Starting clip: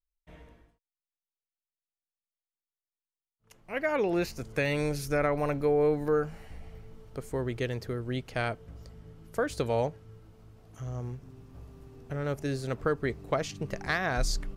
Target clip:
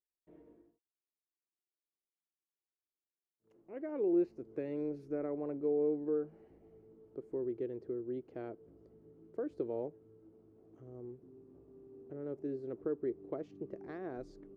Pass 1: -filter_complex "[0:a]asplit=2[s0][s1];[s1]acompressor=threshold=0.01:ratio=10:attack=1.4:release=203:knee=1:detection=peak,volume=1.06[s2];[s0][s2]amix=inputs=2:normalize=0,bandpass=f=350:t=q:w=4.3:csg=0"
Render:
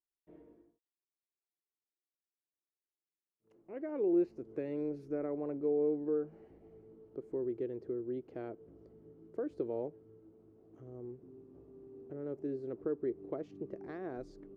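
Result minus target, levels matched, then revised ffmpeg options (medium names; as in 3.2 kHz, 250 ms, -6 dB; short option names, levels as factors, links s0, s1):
compression: peak gain reduction -8 dB
-filter_complex "[0:a]asplit=2[s0][s1];[s1]acompressor=threshold=0.00355:ratio=10:attack=1.4:release=203:knee=1:detection=peak,volume=1.06[s2];[s0][s2]amix=inputs=2:normalize=0,bandpass=f=350:t=q:w=4.3:csg=0"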